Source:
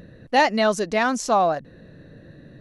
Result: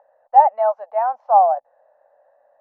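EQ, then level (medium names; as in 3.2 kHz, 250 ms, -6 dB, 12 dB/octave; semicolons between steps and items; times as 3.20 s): elliptic high-pass 580 Hz, stop band 40 dB; resonant low-pass 820 Hz, resonance Q 6.7; distance through air 190 m; -4.5 dB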